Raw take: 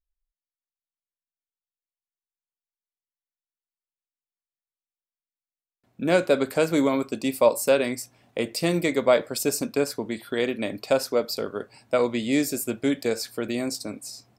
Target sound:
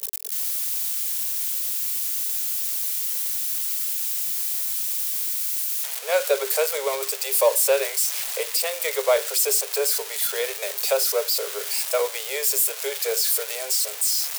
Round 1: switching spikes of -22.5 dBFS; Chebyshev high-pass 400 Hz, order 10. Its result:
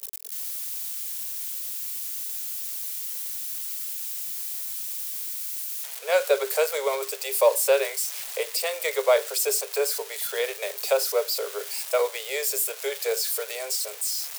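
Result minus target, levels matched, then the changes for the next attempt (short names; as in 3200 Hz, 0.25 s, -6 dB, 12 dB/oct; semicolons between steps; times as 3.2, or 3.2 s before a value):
switching spikes: distortion -6 dB
change: switching spikes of -16 dBFS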